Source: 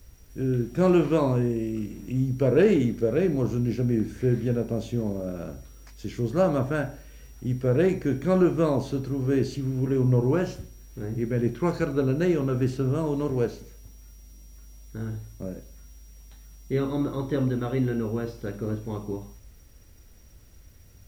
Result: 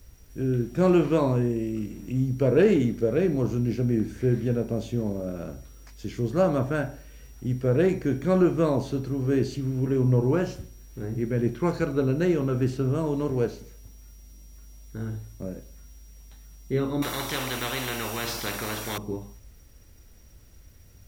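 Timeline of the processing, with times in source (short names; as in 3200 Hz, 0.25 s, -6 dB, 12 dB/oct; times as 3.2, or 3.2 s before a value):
17.02–18.98 spectral compressor 4:1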